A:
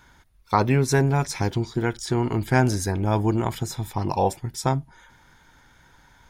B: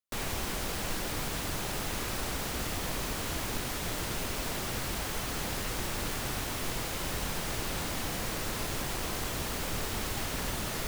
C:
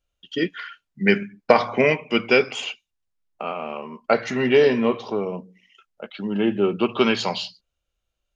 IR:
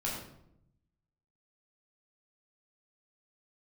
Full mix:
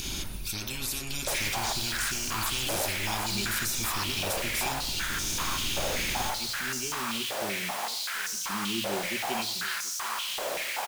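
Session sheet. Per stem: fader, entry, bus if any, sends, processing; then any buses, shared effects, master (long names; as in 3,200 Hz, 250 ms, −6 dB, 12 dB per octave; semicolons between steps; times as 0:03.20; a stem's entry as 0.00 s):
−4.5 dB, 0.00 s, bus A, send −16.5 dB, echo send −19 dB, upward compression, threshold −28 dBFS; every bin compressed towards the loudest bin 10 to 1
−1.0 dB, 1.15 s, no bus, send −11.5 dB, no echo send, high-pass on a step sequencer 5.2 Hz 560–5,900 Hz
−10.0 dB, 2.30 s, bus A, no send, echo send −21.5 dB, parametric band 310 Hz −8.5 dB 2.5 octaves; speech leveller 0.5 s
bus A: 0.0 dB, Chebyshev band-stop filter 390–2,400 Hz, order 5; brickwall limiter −23 dBFS, peak gain reduction 9 dB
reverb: on, RT60 0.75 s, pre-delay 11 ms
echo: single-tap delay 733 ms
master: low-shelf EQ 92 Hz +10.5 dB; mains-hum notches 60/120 Hz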